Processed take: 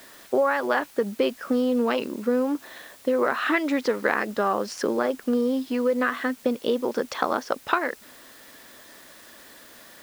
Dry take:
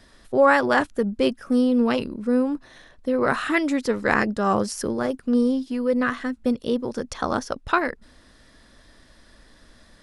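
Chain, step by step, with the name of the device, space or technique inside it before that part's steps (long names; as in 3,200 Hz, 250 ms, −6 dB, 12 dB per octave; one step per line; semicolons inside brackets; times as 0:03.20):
baby monitor (band-pass filter 330–4,000 Hz; downward compressor, threshold −26 dBFS, peak gain reduction 13.5 dB; white noise bed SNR 25 dB)
level +6.5 dB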